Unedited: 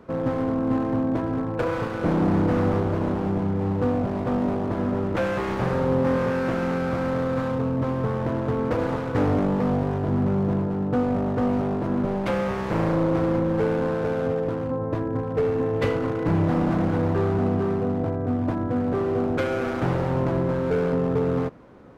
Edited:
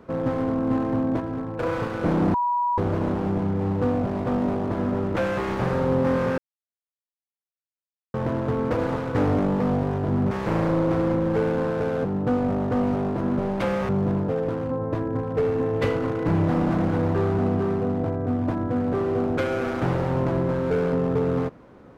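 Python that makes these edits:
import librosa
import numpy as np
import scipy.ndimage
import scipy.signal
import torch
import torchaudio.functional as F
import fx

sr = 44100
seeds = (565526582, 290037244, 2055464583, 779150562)

y = fx.edit(x, sr, fx.clip_gain(start_s=1.2, length_s=0.43, db=-3.5),
    fx.bleep(start_s=2.34, length_s=0.44, hz=970.0, db=-20.0),
    fx.silence(start_s=6.38, length_s=1.76),
    fx.swap(start_s=10.31, length_s=0.4, other_s=12.55, other_length_s=1.74), tone=tone)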